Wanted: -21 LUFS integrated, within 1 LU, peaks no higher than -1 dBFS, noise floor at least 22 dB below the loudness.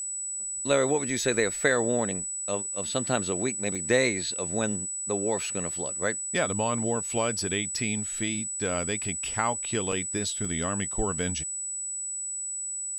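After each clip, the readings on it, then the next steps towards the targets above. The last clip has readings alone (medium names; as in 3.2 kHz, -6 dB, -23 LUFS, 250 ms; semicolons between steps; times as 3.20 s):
dropouts 3; longest dropout 3.8 ms; steady tone 7.9 kHz; tone level -31 dBFS; loudness -27.5 LUFS; peak level -8.5 dBFS; loudness target -21.0 LUFS
-> interpolate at 3.75/9.92/10.45 s, 3.8 ms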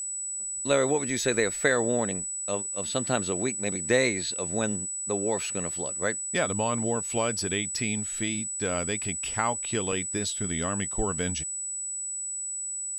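dropouts 0; steady tone 7.9 kHz; tone level -31 dBFS
-> band-stop 7.9 kHz, Q 30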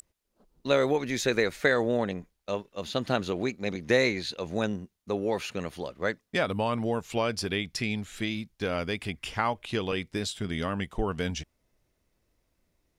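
steady tone not found; loudness -30.0 LUFS; peak level -9.0 dBFS; loudness target -21.0 LUFS
-> trim +9 dB; peak limiter -1 dBFS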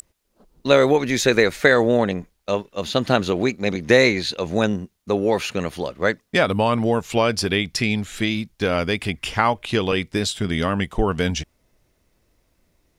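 loudness -21.0 LUFS; peak level -1.0 dBFS; noise floor -68 dBFS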